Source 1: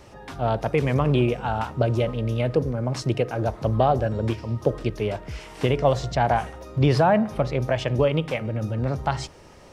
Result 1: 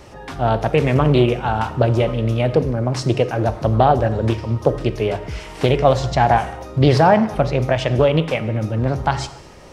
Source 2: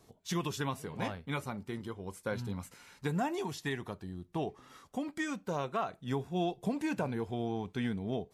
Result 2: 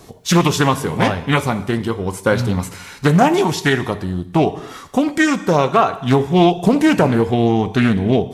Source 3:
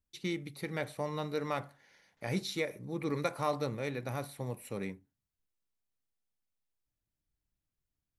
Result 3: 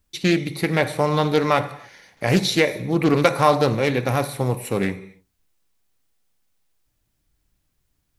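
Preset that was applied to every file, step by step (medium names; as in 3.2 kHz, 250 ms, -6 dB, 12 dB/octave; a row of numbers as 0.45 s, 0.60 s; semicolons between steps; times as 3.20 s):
gated-style reverb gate 310 ms falling, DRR 11.5 dB; loudspeaker Doppler distortion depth 0.29 ms; peak normalisation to -1.5 dBFS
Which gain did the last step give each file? +6.0 dB, +20.0 dB, +16.0 dB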